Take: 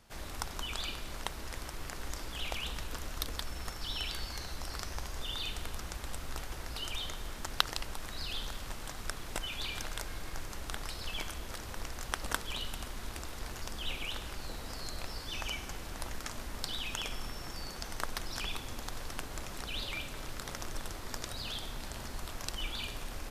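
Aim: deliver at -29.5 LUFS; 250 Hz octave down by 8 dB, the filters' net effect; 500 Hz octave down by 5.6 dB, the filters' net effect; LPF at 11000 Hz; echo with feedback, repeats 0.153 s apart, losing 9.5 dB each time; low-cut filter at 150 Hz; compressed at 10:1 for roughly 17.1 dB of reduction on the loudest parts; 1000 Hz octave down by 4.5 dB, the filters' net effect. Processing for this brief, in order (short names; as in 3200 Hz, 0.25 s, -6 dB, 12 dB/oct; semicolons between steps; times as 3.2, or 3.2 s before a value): HPF 150 Hz; LPF 11000 Hz; bell 250 Hz -8.5 dB; bell 500 Hz -3.5 dB; bell 1000 Hz -4.5 dB; compressor 10:1, threshold -43 dBFS; feedback echo 0.153 s, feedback 33%, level -9.5 dB; gain +16.5 dB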